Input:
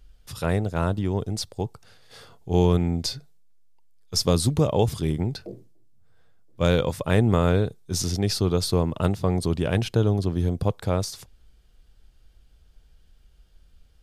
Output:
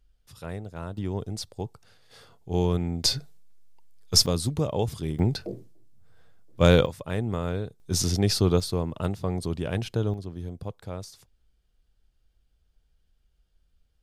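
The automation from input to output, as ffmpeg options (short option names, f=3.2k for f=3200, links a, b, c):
-af "asetnsamples=n=441:p=0,asendcmd='0.97 volume volume -5dB;3.04 volume volume 5.5dB;4.26 volume volume -5.5dB;5.19 volume volume 3dB;6.86 volume volume -9dB;7.8 volume volume 1dB;8.6 volume volume -5.5dB;10.14 volume volume -12dB',volume=-12dB"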